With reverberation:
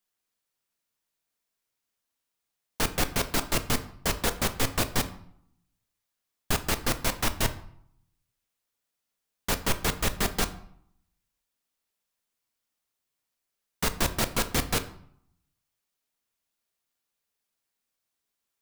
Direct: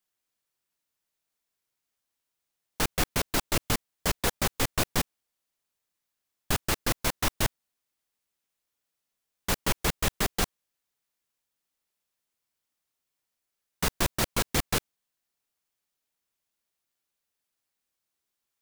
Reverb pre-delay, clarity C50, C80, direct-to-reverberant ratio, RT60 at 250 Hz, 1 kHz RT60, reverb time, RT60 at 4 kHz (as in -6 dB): 4 ms, 14.0 dB, 17.5 dB, 8.5 dB, 0.80 s, 0.70 s, 0.65 s, 0.50 s